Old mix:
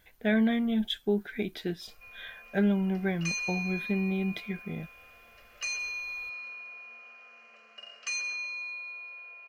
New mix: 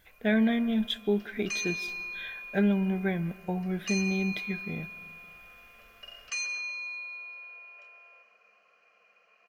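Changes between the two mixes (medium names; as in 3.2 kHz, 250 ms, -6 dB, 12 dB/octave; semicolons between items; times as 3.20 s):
speech: send on; background: entry -1.75 s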